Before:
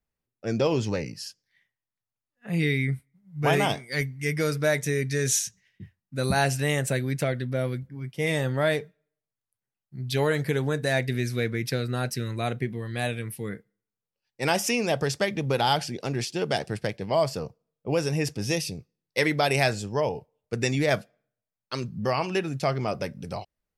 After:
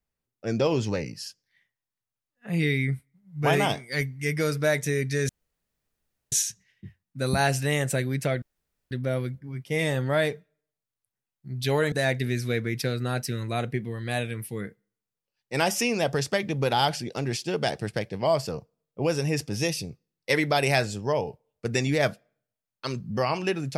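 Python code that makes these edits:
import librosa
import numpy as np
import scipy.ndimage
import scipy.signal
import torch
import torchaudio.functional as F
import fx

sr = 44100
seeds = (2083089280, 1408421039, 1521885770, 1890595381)

y = fx.edit(x, sr, fx.insert_room_tone(at_s=5.29, length_s=1.03),
    fx.insert_room_tone(at_s=7.39, length_s=0.49),
    fx.cut(start_s=10.4, length_s=0.4), tone=tone)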